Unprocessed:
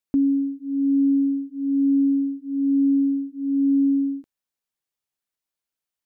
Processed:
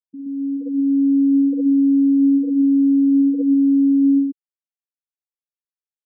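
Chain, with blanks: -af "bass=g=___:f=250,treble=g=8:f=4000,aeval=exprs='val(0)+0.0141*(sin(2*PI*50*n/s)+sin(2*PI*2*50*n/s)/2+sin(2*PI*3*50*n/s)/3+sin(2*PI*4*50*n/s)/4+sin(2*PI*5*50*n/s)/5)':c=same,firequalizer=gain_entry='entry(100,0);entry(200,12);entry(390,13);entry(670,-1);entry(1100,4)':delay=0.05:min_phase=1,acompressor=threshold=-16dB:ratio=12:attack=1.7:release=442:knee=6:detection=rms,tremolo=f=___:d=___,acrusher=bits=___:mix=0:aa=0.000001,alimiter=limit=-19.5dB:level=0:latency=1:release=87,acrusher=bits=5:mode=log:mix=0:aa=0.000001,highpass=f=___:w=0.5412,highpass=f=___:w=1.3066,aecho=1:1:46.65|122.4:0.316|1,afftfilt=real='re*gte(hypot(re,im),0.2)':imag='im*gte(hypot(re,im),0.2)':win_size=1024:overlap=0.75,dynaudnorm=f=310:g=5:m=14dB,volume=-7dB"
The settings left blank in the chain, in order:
4, 210, 0.519, 4, 74, 74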